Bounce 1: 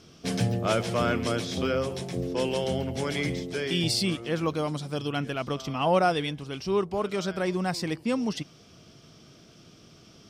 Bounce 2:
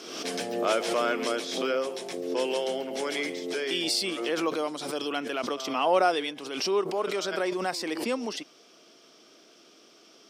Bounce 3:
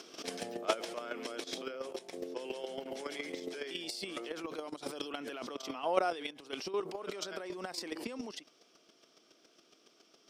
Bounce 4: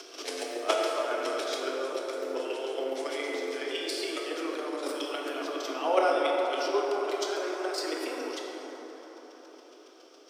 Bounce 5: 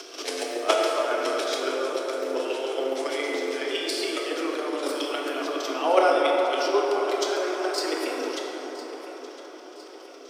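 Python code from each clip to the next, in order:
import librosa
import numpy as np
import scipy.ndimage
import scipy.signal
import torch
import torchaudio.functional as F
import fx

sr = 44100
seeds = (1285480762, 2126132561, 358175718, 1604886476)

y1 = scipy.signal.sosfilt(scipy.signal.butter(4, 300.0, 'highpass', fs=sr, output='sos'), x)
y1 = fx.pre_swell(y1, sr, db_per_s=50.0)
y2 = fx.level_steps(y1, sr, step_db=12)
y2 = fx.chopper(y2, sr, hz=7.2, depth_pct=60, duty_pct=10)
y2 = y2 * 10.0 ** (1.0 / 20.0)
y3 = scipy.signal.sosfilt(scipy.signal.butter(16, 280.0, 'highpass', fs=sr, output='sos'), y2)
y3 = fx.rev_plate(y3, sr, seeds[0], rt60_s=5.0, hf_ratio=0.35, predelay_ms=0, drr_db=-2.0)
y3 = y3 * 10.0 ** (4.0 / 20.0)
y4 = fx.echo_feedback(y3, sr, ms=1009, feedback_pct=52, wet_db=-16.0)
y4 = y4 * 10.0 ** (5.0 / 20.0)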